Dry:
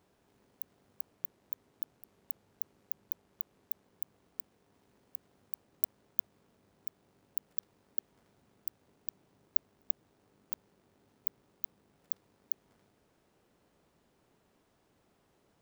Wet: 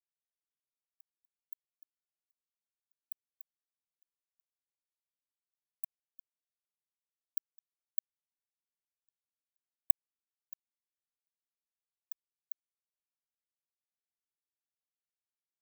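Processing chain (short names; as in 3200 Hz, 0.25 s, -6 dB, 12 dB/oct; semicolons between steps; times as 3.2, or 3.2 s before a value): AM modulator 51 Hz, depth 90%; spectral expander 4:1; gain +4.5 dB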